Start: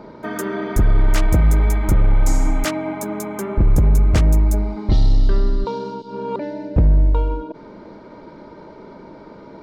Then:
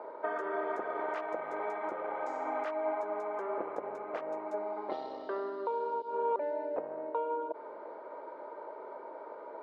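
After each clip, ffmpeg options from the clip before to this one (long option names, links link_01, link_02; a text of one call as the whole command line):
ffmpeg -i in.wav -af "highpass=frequency=490:width=0.5412,highpass=frequency=490:width=1.3066,alimiter=limit=-21.5dB:level=0:latency=1:release=290,lowpass=1200" out.wav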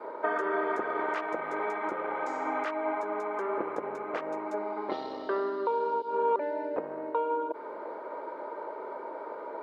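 ffmpeg -i in.wav -af "adynamicequalizer=threshold=0.00355:dfrequency=660:dqfactor=1.6:tfrequency=660:tqfactor=1.6:attack=5:release=100:ratio=0.375:range=4:mode=cutabove:tftype=bell,volume=8dB" out.wav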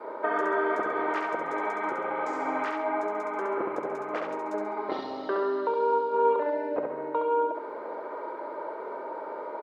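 ffmpeg -i in.wav -af "aecho=1:1:68|136|204|272|340:0.631|0.246|0.096|0.0374|0.0146,volume=1dB" out.wav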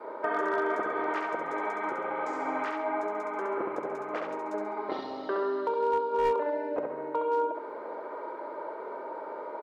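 ffmpeg -i in.wav -af "volume=18dB,asoftclip=hard,volume=-18dB,volume=-2dB" out.wav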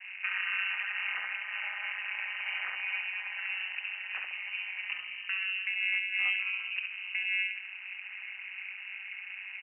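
ffmpeg -i in.wav -af "tremolo=f=190:d=0.889,lowpass=frequency=2600:width_type=q:width=0.5098,lowpass=frequency=2600:width_type=q:width=0.6013,lowpass=frequency=2600:width_type=q:width=0.9,lowpass=frequency=2600:width_type=q:width=2.563,afreqshift=-3100,lowshelf=frequency=420:gain=-7" out.wav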